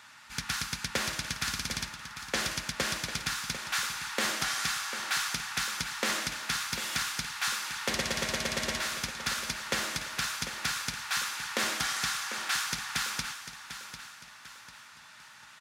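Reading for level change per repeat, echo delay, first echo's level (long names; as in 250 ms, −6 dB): −8.0 dB, 747 ms, −11.0 dB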